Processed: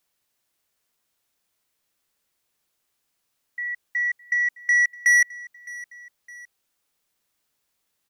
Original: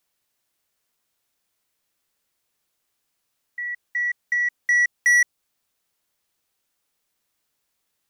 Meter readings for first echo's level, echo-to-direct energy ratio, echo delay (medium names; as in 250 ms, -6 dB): -20.0 dB, -19.0 dB, 612 ms